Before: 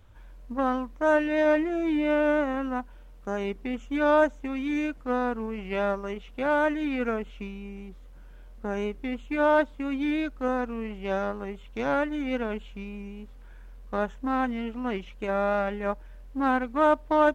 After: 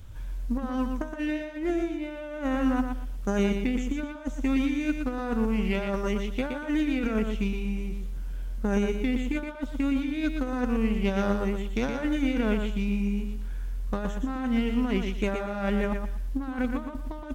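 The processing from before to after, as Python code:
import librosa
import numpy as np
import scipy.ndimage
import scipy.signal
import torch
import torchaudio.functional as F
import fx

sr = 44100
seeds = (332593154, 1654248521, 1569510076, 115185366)

p1 = fx.bass_treble(x, sr, bass_db=6, treble_db=7)
p2 = fx.over_compress(p1, sr, threshold_db=-28.0, ratio=-0.5)
p3 = fx.peak_eq(p2, sr, hz=790.0, db=-4.0, octaves=2.0)
p4 = p3 + fx.echo_feedback(p3, sr, ms=119, feedback_pct=24, wet_db=-6.0, dry=0)
y = F.gain(torch.from_numpy(p4), 2.0).numpy()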